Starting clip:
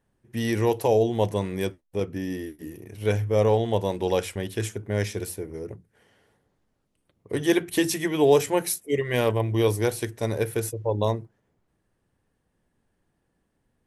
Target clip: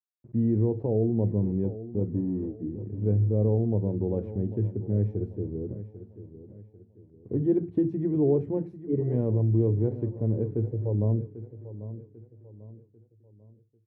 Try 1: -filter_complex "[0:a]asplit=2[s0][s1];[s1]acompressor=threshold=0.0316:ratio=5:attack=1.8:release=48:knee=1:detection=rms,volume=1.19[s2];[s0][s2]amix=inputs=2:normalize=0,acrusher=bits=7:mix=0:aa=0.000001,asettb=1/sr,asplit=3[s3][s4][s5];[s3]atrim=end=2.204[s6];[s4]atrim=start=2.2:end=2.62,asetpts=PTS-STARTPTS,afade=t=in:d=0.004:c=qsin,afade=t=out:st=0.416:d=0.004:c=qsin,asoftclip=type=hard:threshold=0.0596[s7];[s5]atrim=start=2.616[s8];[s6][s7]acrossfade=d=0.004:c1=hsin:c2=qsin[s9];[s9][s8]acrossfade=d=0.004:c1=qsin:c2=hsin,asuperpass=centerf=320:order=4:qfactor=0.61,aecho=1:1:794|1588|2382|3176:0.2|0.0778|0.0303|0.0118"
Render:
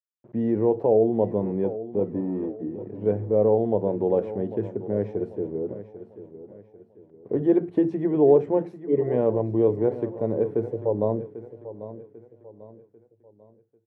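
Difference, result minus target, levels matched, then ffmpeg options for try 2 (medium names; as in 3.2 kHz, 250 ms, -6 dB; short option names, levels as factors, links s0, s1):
125 Hz band -10.5 dB
-filter_complex "[0:a]asplit=2[s0][s1];[s1]acompressor=threshold=0.0316:ratio=5:attack=1.8:release=48:knee=1:detection=rms,volume=1.19[s2];[s0][s2]amix=inputs=2:normalize=0,acrusher=bits=7:mix=0:aa=0.000001,asettb=1/sr,asplit=3[s3][s4][s5];[s3]atrim=end=2.204[s6];[s4]atrim=start=2.2:end=2.62,asetpts=PTS-STARTPTS,afade=t=in:d=0.004:c=qsin,afade=t=out:st=0.416:d=0.004:c=qsin,asoftclip=type=hard:threshold=0.0596[s7];[s5]atrim=start=2.616[s8];[s6][s7]acrossfade=d=0.004:c1=hsin:c2=qsin[s9];[s9][s8]acrossfade=d=0.004:c1=qsin:c2=hsin,asuperpass=centerf=150:order=4:qfactor=0.61,aecho=1:1:794|1588|2382|3176:0.2|0.0778|0.0303|0.0118"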